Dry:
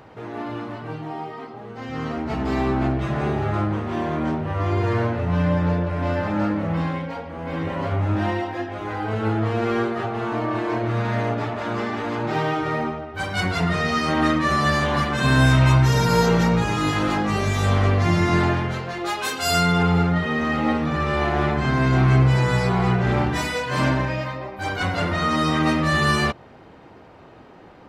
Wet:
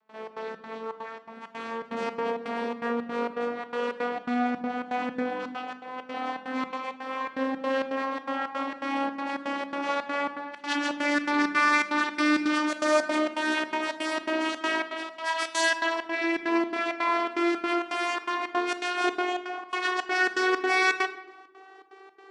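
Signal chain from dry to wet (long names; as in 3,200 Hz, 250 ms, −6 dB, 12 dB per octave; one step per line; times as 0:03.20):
vocoder with a gliding carrier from F3, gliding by +10 semitones
high-pass filter 980 Hz 6 dB per octave
speed change +25%
gate pattern ".xx.xx.xxx" 165 BPM −24 dB
rectangular room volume 380 cubic metres, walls mixed, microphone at 0.39 metres
saturating transformer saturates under 590 Hz
level +4 dB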